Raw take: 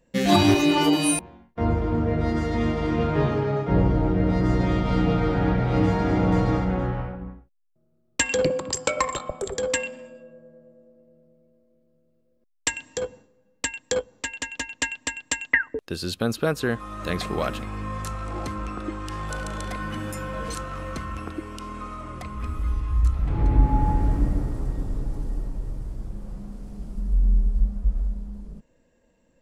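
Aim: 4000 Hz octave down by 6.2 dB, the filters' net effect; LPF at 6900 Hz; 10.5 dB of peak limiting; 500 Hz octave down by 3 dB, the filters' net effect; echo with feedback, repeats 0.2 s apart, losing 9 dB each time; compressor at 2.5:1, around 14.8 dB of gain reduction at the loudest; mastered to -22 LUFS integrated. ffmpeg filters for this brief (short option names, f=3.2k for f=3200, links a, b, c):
-af "lowpass=6.9k,equalizer=f=500:t=o:g=-3.5,equalizer=f=4k:t=o:g=-8,acompressor=threshold=-35dB:ratio=2.5,alimiter=level_in=3dB:limit=-24dB:level=0:latency=1,volume=-3dB,aecho=1:1:200|400|600|800:0.355|0.124|0.0435|0.0152,volume=15.5dB"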